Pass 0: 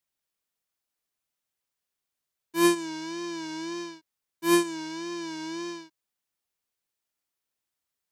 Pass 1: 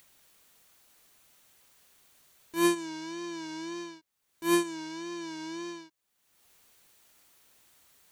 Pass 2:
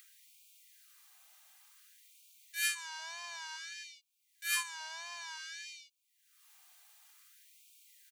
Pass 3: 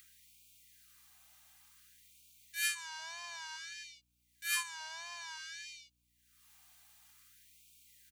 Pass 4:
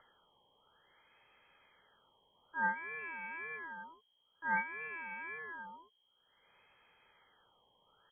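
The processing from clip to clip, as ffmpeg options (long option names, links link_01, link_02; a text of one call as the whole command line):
ffmpeg -i in.wav -af "bandreject=frequency=5100:width=18,acompressor=mode=upward:threshold=-37dB:ratio=2.5,volume=-3.5dB" out.wav
ffmpeg -i in.wav -af "aecho=1:1:2.5:0.38,afftfilt=real='re*gte(b*sr/1024,560*pow(2200/560,0.5+0.5*sin(2*PI*0.55*pts/sr)))':imag='im*gte(b*sr/1024,560*pow(2200/560,0.5+0.5*sin(2*PI*0.55*pts/sr)))':win_size=1024:overlap=0.75" out.wav
ffmpeg -i in.wav -af "aeval=exprs='val(0)+0.000126*(sin(2*PI*60*n/s)+sin(2*PI*2*60*n/s)/2+sin(2*PI*3*60*n/s)/3+sin(2*PI*4*60*n/s)/4+sin(2*PI*5*60*n/s)/5)':channel_layout=same,volume=-1dB" out.wav
ffmpeg -i in.wav -af "lowpass=frequency=2800:width_type=q:width=0.5098,lowpass=frequency=2800:width_type=q:width=0.6013,lowpass=frequency=2800:width_type=q:width=0.9,lowpass=frequency=2800:width_type=q:width=2.563,afreqshift=-3300,volume=4dB" out.wav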